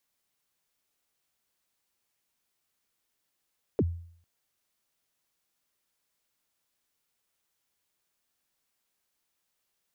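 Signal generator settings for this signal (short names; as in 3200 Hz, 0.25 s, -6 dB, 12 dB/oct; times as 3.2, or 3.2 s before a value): kick drum length 0.45 s, from 520 Hz, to 85 Hz, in 45 ms, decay 0.58 s, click off, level -19 dB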